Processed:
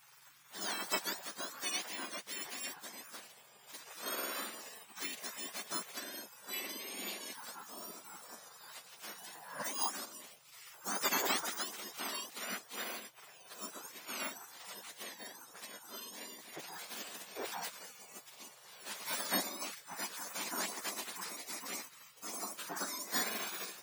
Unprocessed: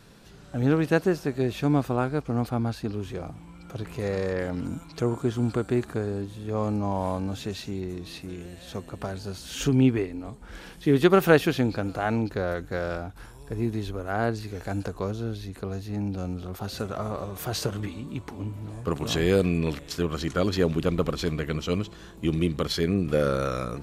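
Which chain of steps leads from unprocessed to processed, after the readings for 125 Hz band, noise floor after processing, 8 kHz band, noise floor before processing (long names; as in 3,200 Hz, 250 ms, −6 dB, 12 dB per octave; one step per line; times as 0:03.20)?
−36.0 dB, −60 dBFS, +3.0 dB, −47 dBFS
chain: frequency axis turned over on the octave scale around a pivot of 1,600 Hz
gate on every frequency bin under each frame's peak −15 dB weak
level +2 dB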